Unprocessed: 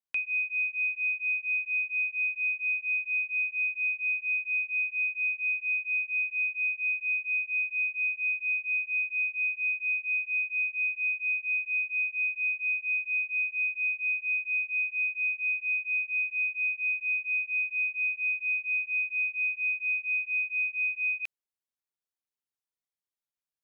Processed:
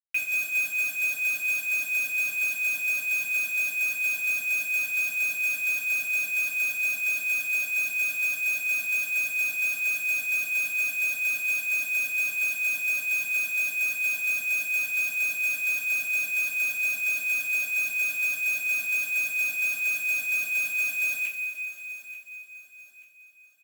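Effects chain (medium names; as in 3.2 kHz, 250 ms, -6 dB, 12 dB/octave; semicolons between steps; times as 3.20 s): band-pass filter 2.3 kHz, Q 2.3; companded quantiser 4-bit; feedback delay 884 ms, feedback 40%, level -16 dB; two-slope reverb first 0.27 s, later 3.4 s, from -18 dB, DRR -5.5 dB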